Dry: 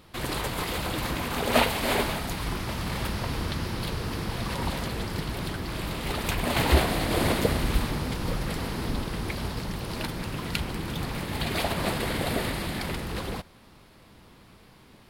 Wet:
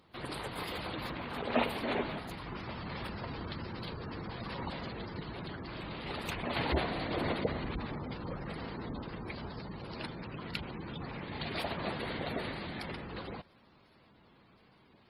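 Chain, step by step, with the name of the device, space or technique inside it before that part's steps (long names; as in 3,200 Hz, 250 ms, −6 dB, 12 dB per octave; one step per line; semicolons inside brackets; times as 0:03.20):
0:01.56–0:02.19: dynamic equaliser 270 Hz, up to +4 dB, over −36 dBFS, Q 0.97
noise-suppressed video call (high-pass filter 120 Hz 6 dB per octave; gate on every frequency bin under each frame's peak −20 dB strong; level −7.5 dB; Opus 24 kbit/s 48,000 Hz)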